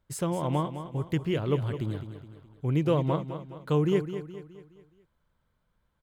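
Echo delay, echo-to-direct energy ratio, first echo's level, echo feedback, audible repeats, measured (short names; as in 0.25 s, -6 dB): 0.21 s, -9.5 dB, -10.5 dB, 45%, 4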